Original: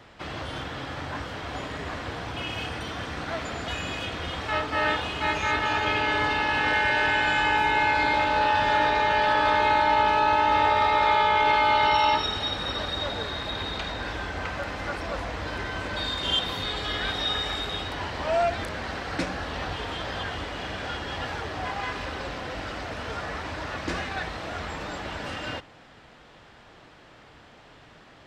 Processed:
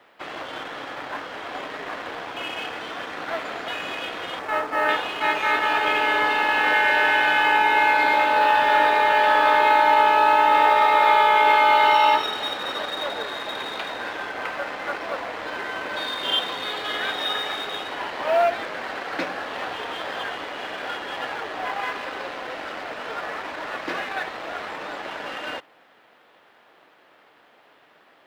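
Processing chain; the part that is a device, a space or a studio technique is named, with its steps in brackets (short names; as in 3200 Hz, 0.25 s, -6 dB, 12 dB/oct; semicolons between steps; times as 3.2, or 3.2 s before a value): phone line with mismatched companding (BPF 370–3400 Hz; G.711 law mismatch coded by A); 4.39–4.89 bell 3400 Hz -8.5 dB 1.2 oct; gain +5.5 dB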